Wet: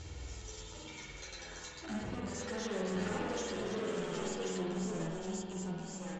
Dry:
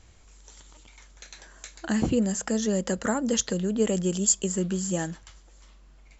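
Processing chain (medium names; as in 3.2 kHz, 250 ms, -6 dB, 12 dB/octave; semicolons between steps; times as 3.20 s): high-pass 80 Hz 12 dB/octave; peaking EQ 1.3 kHz -9 dB 2.8 oct; delay 1077 ms -7.5 dB; upward compressor, threshold -38 dBFS; comb 2.2 ms, depth 40%; compression, threshold -32 dBFS, peak gain reduction 13.5 dB; 2.27–4.61 s: overdrive pedal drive 20 dB, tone 3.3 kHz, clips at -29 dBFS; hard clipper -39.5 dBFS, distortion -7 dB; low-pass 6.6 kHz 24 dB/octave; reverberation RT60 1.7 s, pre-delay 48 ms, DRR -3 dB; endless flanger 9.8 ms -1.2 Hz; trim +3 dB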